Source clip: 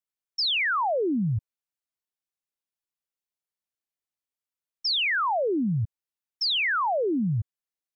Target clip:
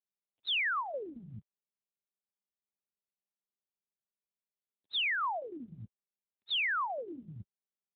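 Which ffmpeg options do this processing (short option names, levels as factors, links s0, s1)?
-af "lowshelf=f=340:g=-6.5,volume=0.596" -ar 8000 -c:a libopencore_amrnb -b:a 12200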